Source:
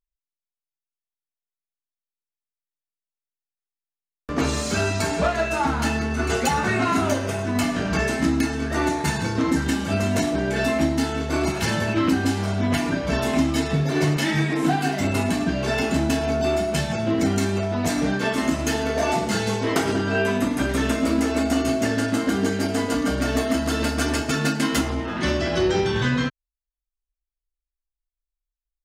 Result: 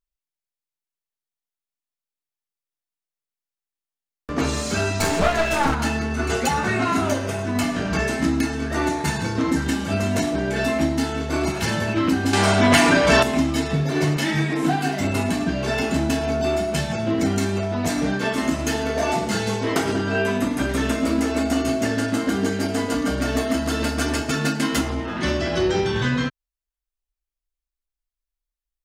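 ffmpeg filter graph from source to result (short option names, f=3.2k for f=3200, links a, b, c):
-filter_complex "[0:a]asettb=1/sr,asplit=3[a][b][c];[a]atrim=end=5.004[d];[b]atrim=start=5:end=5.75,asetpts=PTS-STARTPTS,afade=t=in:d=0.004:c=qsin,afade=t=out:st=0.746:d=0.004:c=qsin,highshelf=f=11k:g=5,acontrast=24,aeval=exprs='clip(val(0),-1,0.0708)':c=same[e];[c]atrim=start=5.746[f];[d][e]acrossfade=d=0.004:c1=hsin:c2=qsin[g];[g][f]acrossfade=d=0.004:c1=qsin:c2=hsin,asettb=1/sr,asplit=3[h][i][j];[h]atrim=end=12.334[k];[i]atrim=start=12.33:end=13.23,asetpts=PTS-STARTPTS,afade=t=in:d=0.004:c=qsin,afade=t=out:st=0.896:d=0.004:c=qsin,equalizer=f=8.5k:t=o:w=0.48:g=7,acontrast=78,asplit=2[l][m];[m]highpass=f=720:p=1,volume=13dB,asoftclip=type=tanh:threshold=-5dB[n];[l][n]amix=inputs=2:normalize=0,lowpass=f=5k:p=1,volume=-6dB[o];[j]atrim=start=13.226[p];[k][o]acrossfade=d=0.004:c1=hsin:c2=qsin[q];[q][p]acrossfade=d=0.004:c1=qsin:c2=hsin"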